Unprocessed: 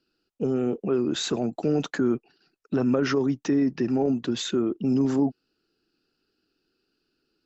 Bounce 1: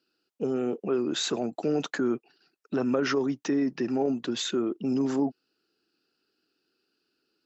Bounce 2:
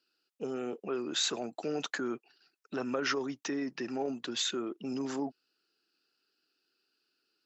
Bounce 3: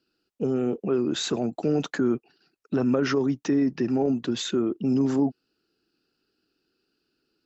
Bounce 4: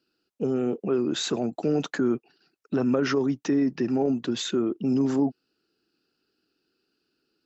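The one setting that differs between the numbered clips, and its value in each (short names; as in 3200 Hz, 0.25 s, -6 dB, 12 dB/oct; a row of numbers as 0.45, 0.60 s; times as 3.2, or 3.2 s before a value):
HPF, cutoff: 320, 1200, 44, 110 Hz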